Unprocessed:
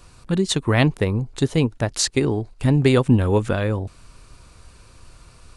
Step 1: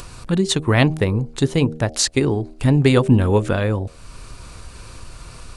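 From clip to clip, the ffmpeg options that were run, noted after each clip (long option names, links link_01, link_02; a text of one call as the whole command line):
ffmpeg -i in.wav -filter_complex "[0:a]asplit=2[link_01][link_02];[link_02]acompressor=mode=upward:threshold=-23dB:ratio=2.5,volume=0.5dB[link_03];[link_01][link_03]amix=inputs=2:normalize=0,bandreject=frequency=78.17:width_type=h:width=4,bandreject=frequency=156.34:width_type=h:width=4,bandreject=frequency=234.51:width_type=h:width=4,bandreject=frequency=312.68:width_type=h:width=4,bandreject=frequency=390.85:width_type=h:width=4,bandreject=frequency=469.02:width_type=h:width=4,bandreject=frequency=547.19:width_type=h:width=4,bandreject=frequency=625.36:width_type=h:width=4,bandreject=frequency=703.53:width_type=h:width=4,bandreject=frequency=781.7:width_type=h:width=4,volume=-4dB" out.wav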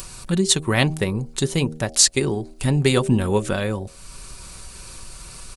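ffmpeg -i in.wav -af "aecho=1:1:5.3:0.33,crystalizer=i=2.5:c=0,volume=-4dB" out.wav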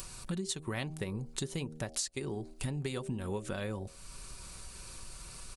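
ffmpeg -i in.wav -af "acompressor=threshold=-24dB:ratio=12,volume=-8.5dB" out.wav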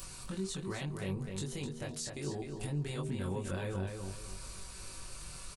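ffmpeg -i in.wav -filter_complex "[0:a]alimiter=level_in=6.5dB:limit=-24dB:level=0:latency=1:release=21,volume=-6.5dB,asplit=2[link_01][link_02];[link_02]adelay=21,volume=-3dB[link_03];[link_01][link_03]amix=inputs=2:normalize=0,asplit=2[link_04][link_05];[link_05]adelay=255,lowpass=frequency=5000:poles=1,volume=-5dB,asplit=2[link_06][link_07];[link_07]adelay=255,lowpass=frequency=5000:poles=1,volume=0.32,asplit=2[link_08][link_09];[link_09]adelay=255,lowpass=frequency=5000:poles=1,volume=0.32,asplit=2[link_10][link_11];[link_11]adelay=255,lowpass=frequency=5000:poles=1,volume=0.32[link_12];[link_04][link_06][link_08][link_10][link_12]amix=inputs=5:normalize=0,volume=-1.5dB" out.wav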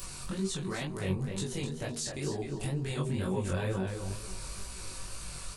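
ffmpeg -i in.wav -af "flanger=delay=16:depth=6.7:speed=2.1,volume=7.5dB" out.wav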